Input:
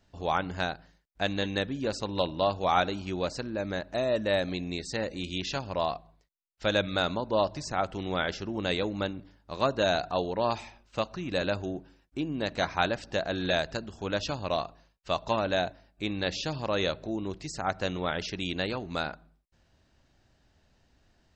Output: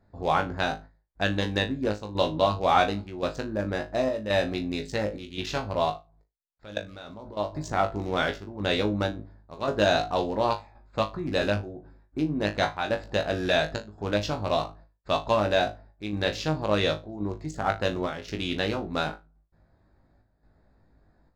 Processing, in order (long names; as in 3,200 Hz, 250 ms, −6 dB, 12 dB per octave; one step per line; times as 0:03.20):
adaptive Wiener filter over 15 samples
square-wave tremolo 0.93 Hz, depth 60%, duty 80%
0:05.90–0:07.37: output level in coarse steps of 23 dB
flutter between parallel walls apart 3.3 metres, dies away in 0.21 s
level +3 dB